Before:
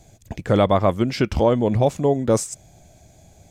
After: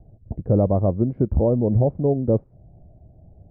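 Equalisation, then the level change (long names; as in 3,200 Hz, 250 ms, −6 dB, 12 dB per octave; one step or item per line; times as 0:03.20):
transistor ladder low-pass 770 Hz, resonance 25%
low-shelf EQ 200 Hz +11.5 dB
0.0 dB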